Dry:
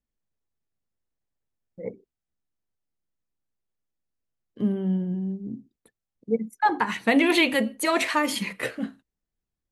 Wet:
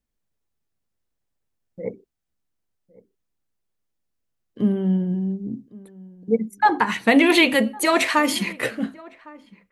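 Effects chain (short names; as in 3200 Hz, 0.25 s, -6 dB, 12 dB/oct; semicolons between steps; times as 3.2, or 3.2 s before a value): outdoor echo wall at 190 m, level -22 dB; gain +4.5 dB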